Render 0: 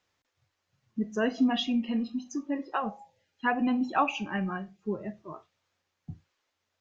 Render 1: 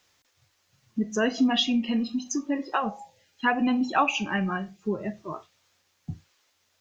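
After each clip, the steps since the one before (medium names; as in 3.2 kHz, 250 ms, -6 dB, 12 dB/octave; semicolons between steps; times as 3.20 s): treble shelf 3.3 kHz +10 dB; in parallel at +1 dB: compression, threshold -34 dBFS, peak gain reduction 14 dB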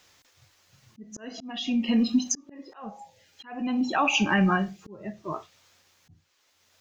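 peak limiter -19.5 dBFS, peak gain reduction 9 dB; slow attack 712 ms; trim +6.5 dB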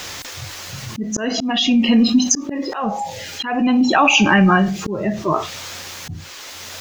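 level flattener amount 50%; trim +7.5 dB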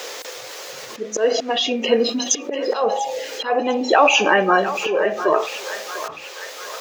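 resonant high-pass 470 Hz, resonance Q 4.9; on a send: band-passed feedback delay 697 ms, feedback 61%, band-pass 1.7 kHz, level -9 dB; on the sum: trim -2.5 dB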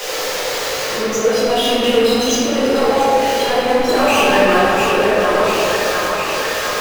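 power-law waveshaper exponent 0.35; reverberation RT60 3.1 s, pre-delay 5 ms, DRR -9.5 dB; trim -16 dB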